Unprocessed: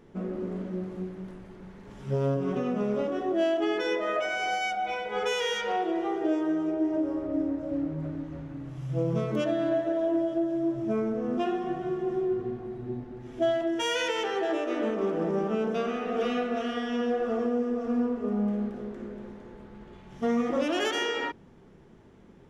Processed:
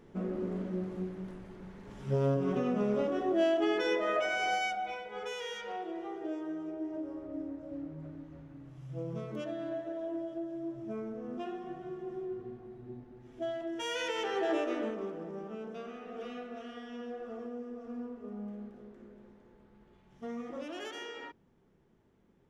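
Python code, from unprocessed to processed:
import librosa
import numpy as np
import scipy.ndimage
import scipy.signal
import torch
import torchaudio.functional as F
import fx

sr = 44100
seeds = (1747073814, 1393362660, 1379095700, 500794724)

y = fx.gain(x, sr, db=fx.line((4.58, -2.0), (5.13, -11.0), (13.52, -11.0), (14.59, -1.5), (15.24, -14.0)))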